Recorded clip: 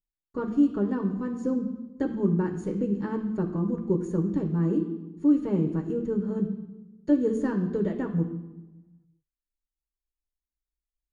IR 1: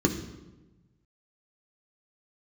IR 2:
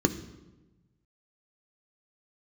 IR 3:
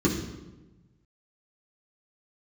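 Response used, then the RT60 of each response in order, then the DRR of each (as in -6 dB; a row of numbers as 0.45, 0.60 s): 1; 1.1, 1.1, 1.1 s; 2.5, 8.0, -4.5 dB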